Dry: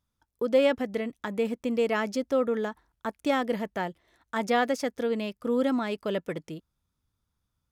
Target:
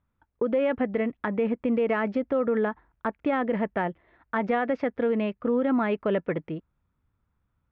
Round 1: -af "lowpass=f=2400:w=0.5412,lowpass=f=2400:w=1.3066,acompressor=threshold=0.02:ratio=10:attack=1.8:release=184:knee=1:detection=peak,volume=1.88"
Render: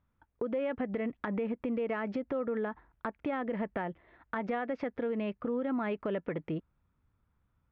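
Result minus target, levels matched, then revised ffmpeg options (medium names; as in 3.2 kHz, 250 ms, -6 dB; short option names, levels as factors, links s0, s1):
compression: peak gain reduction +8.5 dB
-af "lowpass=f=2400:w=0.5412,lowpass=f=2400:w=1.3066,acompressor=threshold=0.0596:ratio=10:attack=1.8:release=184:knee=1:detection=peak,volume=1.88"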